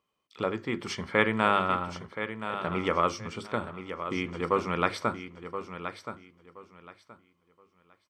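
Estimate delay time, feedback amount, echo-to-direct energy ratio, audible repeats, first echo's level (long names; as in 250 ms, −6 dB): 1,024 ms, 23%, −10.0 dB, 2, −10.0 dB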